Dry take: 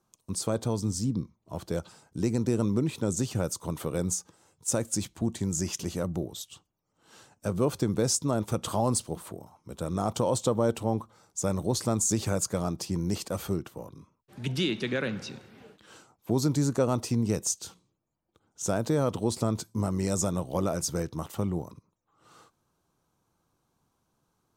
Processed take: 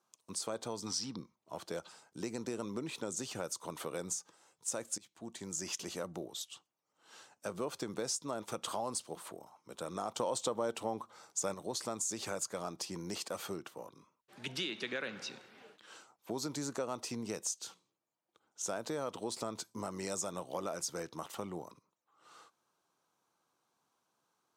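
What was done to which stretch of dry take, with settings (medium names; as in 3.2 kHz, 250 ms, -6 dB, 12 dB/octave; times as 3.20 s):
0.86–1.15 s: time-frequency box 730–6000 Hz +11 dB
4.98–5.68 s: fade in, from -20.5 dB
10.20–11.54 s: gain +6.5 dB
whole clip: frequency weighting A; compression 2.5:1, threshold -34 dBFS; trim -2 dB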